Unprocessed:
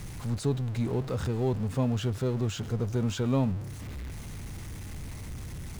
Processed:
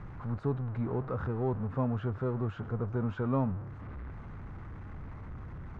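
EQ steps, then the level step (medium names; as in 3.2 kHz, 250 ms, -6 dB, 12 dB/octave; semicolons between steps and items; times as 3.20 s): resonant low-pass 1.3 kHz, resonance Q 2.2; -4.0 dB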